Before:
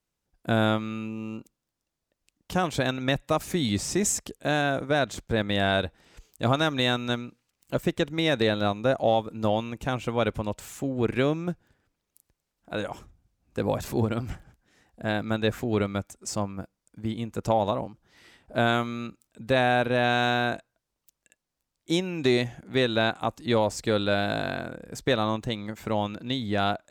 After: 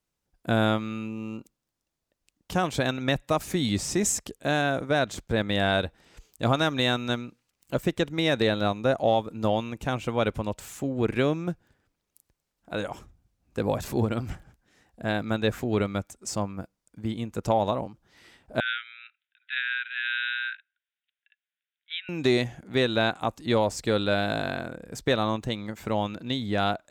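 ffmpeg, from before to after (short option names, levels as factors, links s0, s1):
-filter_complex "[0:a]asettb=1/sr,asplit=3[s0][s1][s2];[s0]atrim=end=18.604[s3];[s1]atrim=start=18.6:end=22.09,asetpts=PTS-STARTPTS,afade=t=in:d=0.004:c=qsin,afade=t=out:st=3.486:d=0.004:c=qsin,asuperpass=centerf=2300:order=20:qfactor=0.98[s4];[s2]atrim=start=22.086[s5];[s3][s4]acrossfade=d=0.004:c1=hsin:c2=qsin[s6];[s6][s5]acrossfade=d=0.004:c1=qsin:c2=hsin"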